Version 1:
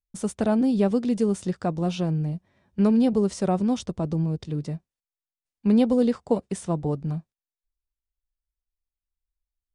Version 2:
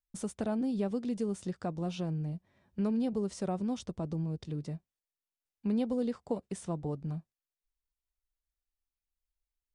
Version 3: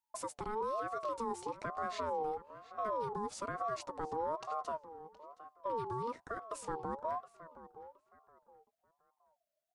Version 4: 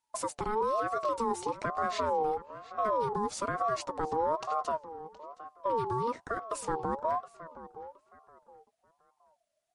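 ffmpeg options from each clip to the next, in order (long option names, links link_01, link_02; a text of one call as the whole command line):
ffmpeg -i in.wav -af "acompressor=threshold=-37dB:ratio=1.5,volume=-4dB" out.wav
ffmpeg -i in.wav -filter_complex "[0:a]alimiter=level_in=6.5dB:limit=-24dB:level=0:latency=1:release=96,volume=-6.5dB,asplit=2[link_01][link_02];[link_02]adelay=719,lowpass=frequency=2900:poles=1,volume=-14.5dB,asplit=2[link_03][link_04];[link_04]adelay=719,lowpass=frequency=2900:poles=1,volume=0.28,asplit=2[link_05][link_06];[link_06]adelay=719,lowpass=frequency=2900:poles=1,volume=0.28[link_07];[link_01][link_03][link_05][link_07]amix=inputs=4:normalize=0,aeval=exprs='val(0)*sin(2*PI*770*n/s+770*0.2/1.1*sin(2*PI*1.1*n/s))':channel_layout=same,volume=2dB" out.wav
ffmpeg -i in.wav -af "volume=7.5dB" -ar 44100 -c:a libmp3lame -b:a 48k out.mp3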